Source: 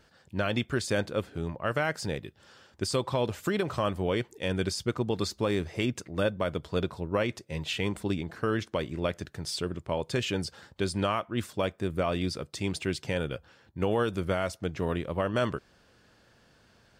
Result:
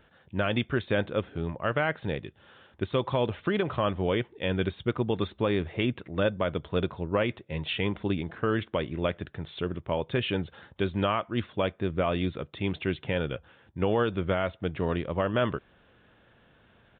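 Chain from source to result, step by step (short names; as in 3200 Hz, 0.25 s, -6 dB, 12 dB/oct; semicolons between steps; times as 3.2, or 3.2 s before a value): downsampling 8000 Hz; gain +1.5 dB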